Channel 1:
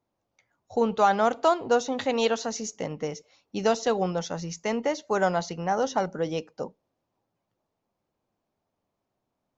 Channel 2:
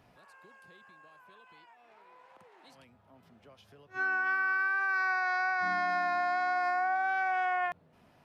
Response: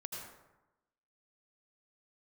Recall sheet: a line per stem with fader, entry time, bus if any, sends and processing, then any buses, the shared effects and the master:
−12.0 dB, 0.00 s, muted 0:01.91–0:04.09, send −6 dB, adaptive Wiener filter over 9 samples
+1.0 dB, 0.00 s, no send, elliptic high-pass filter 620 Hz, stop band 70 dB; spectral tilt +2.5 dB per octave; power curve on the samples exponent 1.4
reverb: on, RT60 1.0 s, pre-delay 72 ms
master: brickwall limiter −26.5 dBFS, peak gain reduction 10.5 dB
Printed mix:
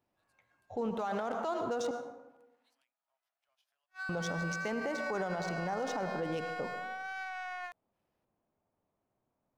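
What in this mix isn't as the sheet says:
stem 1 −12.0 dB → −4.0 dB
stem 2 +1.0 dB → −8.0 dB

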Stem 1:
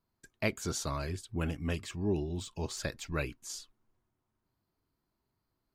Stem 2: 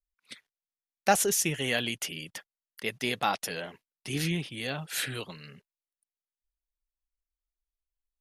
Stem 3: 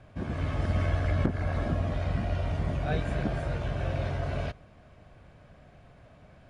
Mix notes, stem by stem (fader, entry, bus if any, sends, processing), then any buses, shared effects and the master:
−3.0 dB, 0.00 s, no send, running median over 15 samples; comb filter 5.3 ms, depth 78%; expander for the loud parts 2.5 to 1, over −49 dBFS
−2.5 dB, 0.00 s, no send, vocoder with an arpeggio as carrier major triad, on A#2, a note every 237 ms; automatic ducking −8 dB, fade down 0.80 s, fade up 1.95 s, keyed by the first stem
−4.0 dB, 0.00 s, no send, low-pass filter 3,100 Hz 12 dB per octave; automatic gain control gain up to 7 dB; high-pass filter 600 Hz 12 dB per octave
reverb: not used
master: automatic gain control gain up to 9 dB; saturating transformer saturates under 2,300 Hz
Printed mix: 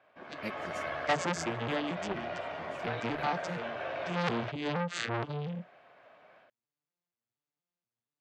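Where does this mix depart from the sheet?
stem 1: missing running median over 15 samples
stem 2 −2.5 dB → +9.0 dB
master: missing automatic gain control gain up to 9 dB

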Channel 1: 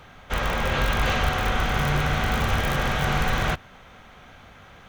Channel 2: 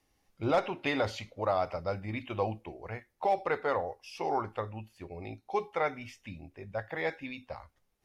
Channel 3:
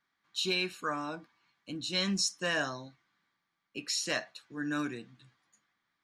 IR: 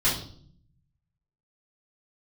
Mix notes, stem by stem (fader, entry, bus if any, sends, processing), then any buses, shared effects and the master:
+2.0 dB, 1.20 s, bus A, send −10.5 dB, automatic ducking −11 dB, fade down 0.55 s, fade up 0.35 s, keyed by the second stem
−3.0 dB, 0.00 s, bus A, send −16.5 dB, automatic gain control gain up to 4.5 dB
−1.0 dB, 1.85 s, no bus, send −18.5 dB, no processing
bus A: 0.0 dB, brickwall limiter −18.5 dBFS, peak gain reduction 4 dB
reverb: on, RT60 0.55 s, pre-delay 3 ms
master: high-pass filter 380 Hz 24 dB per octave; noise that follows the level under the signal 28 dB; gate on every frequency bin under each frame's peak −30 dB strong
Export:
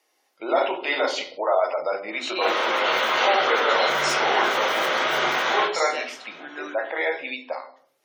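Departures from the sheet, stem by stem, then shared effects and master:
stem 1: entry 1.20 s → 2.10 s
stem 2 −3.0 dB → +6.0 dB

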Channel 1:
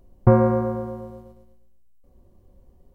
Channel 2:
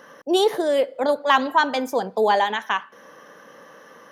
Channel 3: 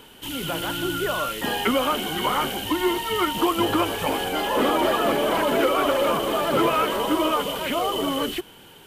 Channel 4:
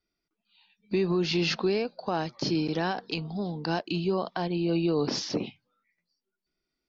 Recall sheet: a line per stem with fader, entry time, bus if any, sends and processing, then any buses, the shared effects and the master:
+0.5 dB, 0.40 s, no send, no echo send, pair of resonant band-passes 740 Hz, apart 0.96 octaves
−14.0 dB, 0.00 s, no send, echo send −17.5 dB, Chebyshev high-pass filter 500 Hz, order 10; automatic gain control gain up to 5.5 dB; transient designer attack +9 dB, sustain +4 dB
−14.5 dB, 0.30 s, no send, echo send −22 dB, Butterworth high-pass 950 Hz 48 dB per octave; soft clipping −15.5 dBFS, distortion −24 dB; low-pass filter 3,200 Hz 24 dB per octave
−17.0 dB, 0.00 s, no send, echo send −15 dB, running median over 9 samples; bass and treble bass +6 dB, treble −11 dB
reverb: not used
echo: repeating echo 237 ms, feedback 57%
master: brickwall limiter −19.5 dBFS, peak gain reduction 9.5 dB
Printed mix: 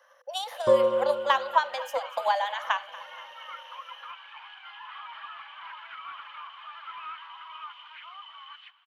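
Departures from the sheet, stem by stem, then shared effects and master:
stem 4: muted
master: missing brickwall limiter −19.5 dBFS, peak gain reduction 9.5 dB

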